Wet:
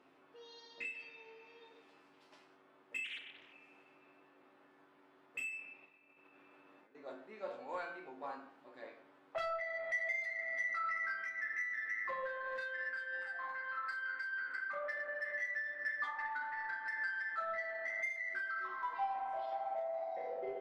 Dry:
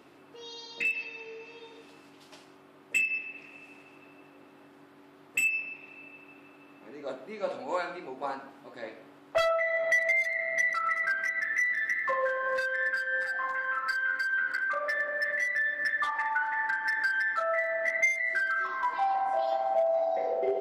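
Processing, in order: overdrive pedal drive 7 dB, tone 1800 Hz, clips at -18.5 dBFS; on a send at -17.5 dB: steep low-pass 7100 Hz 48 dB/oct + reverb RT60 0.30 s, pre-delay 4 ms; 5.85–6.95 on the sum: negative-ratio compressor -55 dBFS, ratio -1; resonator 53 Hz, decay 0.35 s, harmonics odd, mix 80%; 3.04–3.53 Doppler distortion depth 0.54 ms; gain -1.5 dB

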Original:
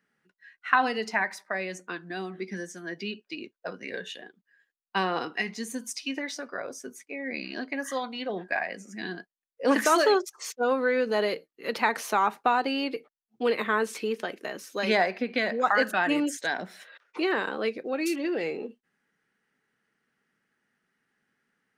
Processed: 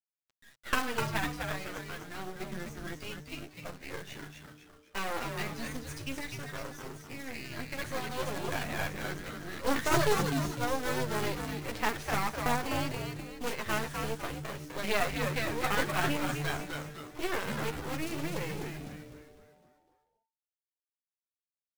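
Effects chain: 7.47–9.97 reverse delay 0.305 s, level -0.5 dB; high shelf 4800 Hz -5.5 dB; de-hum 377.7 Hz, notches 32; companded quantiser 4-bit; flange 0.15 Hz, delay 7.4 ms, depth 4.6 ms, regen 0%; half-wave rectifier; frequency-shifting echo 0.252 s, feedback 45%, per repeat -150 Hz, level -4.5 dB

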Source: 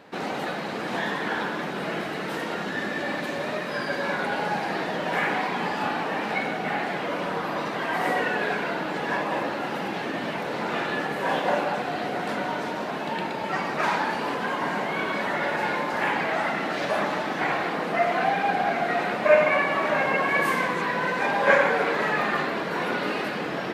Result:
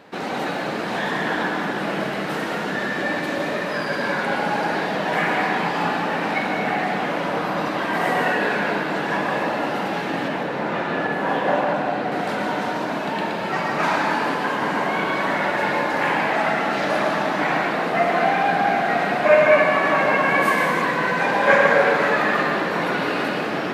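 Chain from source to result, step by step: 10.28–12.12 high shelf 3500 Hz -10 dB; on a send: reverb RT60 1.7 s, pre-delay 0.103 s, DRR 2 dB; on the sum: gain +2.5 dB

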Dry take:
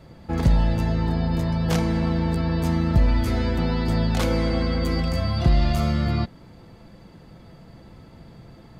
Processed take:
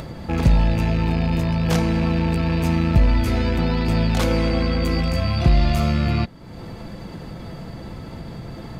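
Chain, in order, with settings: rattling part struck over -29 dBFS, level -27 dBFS; upward compressor, threshold -26 dBFS; gain +2.5 dB

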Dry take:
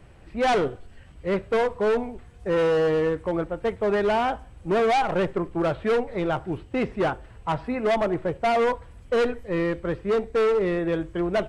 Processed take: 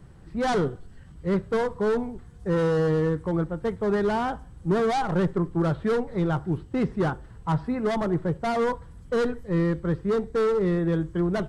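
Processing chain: fifteen-band EQ 160 Hz +8 dB, 630 Hz -7 dB, 2500 Hz -11 dB

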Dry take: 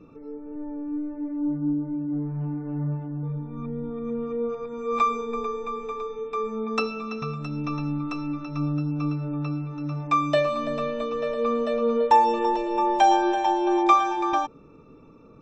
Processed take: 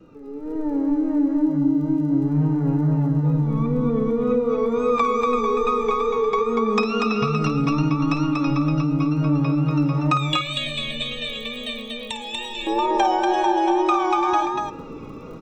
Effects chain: compressor 6:1, threshold -32 dBFS, peak gain reduction 17.5 dB; crackle 20/s -55 dBFS; wow and flutter 100 cents; 10.17–12.67 EQ curve 120 Hz 0 dB, 420 Hz -21 dB, 640 Hz -15 dB, 1400 Hz -21 dB, 2000 Hz +1 dB, 3600 Hz +14 dB, 5200 Hz -9 dB, 7900 Hz +12 dB; buzz 400 Hz, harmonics 19, -68 dBFS -7 dB/oct; AGC gain up to 12.5 dB; tapped delay 53/239 ms -11/-3.5 dB; reverb RT60 0.55 s, pre-delay 0.107 s, DRR 18.5 dB

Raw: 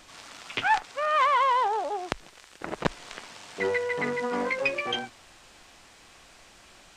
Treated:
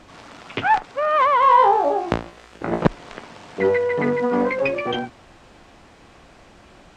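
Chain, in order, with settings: HPF 220 Hz 6 dB/oct; tilt -4 dB/oct; 1.4–2.85 flutter echo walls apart 3 m, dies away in 0.33 s; gain +6 dB

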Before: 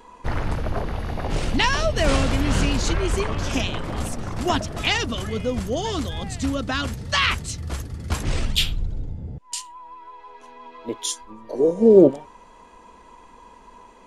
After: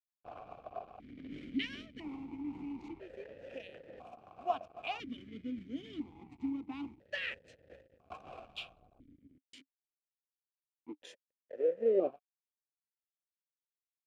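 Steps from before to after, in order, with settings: 1.81–4.12 compressor 5:1, threshold -22 dBFS, peak gain reduction 8 dB; backlash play -25 dBFS; vowel sequencer 1 Hz; gain -5 dB

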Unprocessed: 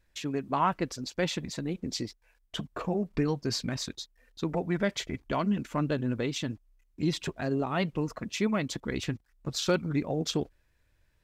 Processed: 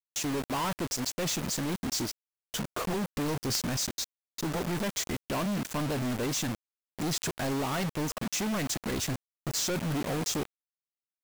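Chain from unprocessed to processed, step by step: resonant high shelf 4700 Hz +8 dB, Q 1.5; companded quantiser 2-bit; gain -4 dB

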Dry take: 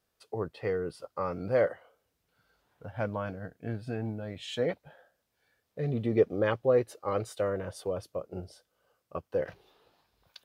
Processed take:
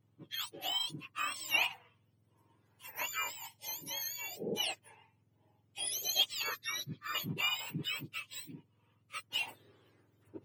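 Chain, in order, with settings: spectrum mirrored in octaves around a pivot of 1200 Hz; 6.42–7.15 fixed phaser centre 2900 Hz, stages 6

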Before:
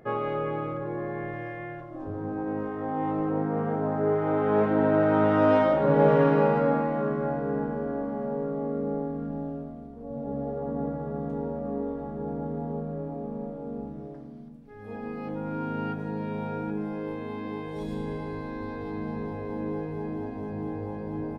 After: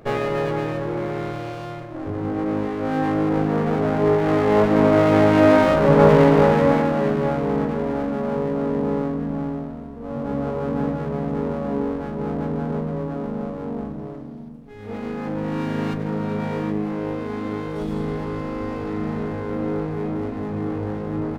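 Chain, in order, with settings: running maximum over 17 samples; gain +7.5 dB

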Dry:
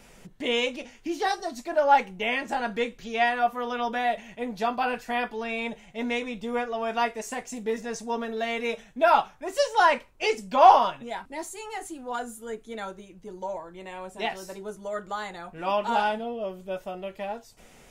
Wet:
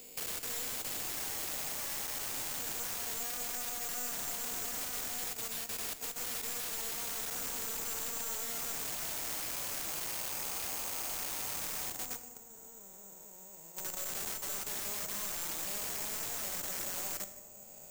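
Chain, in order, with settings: time blur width 1.45 s; 5.08–7.33 HPF 730 Hz 6 dB/oct; limiter -31.5 dBFS, peak gain reduction 11 dB; level quantiser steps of 21 dB; wrapped overs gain 37.5 dB; shoebox room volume 480 m³, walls mixed, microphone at 0.45 m; careless resampling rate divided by 6×, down none, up zero stuff; three-band squash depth 40%; gain -3.5 dB

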